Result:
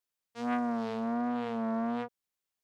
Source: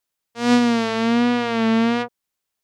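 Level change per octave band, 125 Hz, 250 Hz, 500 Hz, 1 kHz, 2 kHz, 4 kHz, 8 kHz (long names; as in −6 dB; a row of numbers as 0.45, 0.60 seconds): −14.5 dB, −14.0 dB, −13.5 dB, −11.0 dB, −18.0 dB, −24.5 dB, below −20 dB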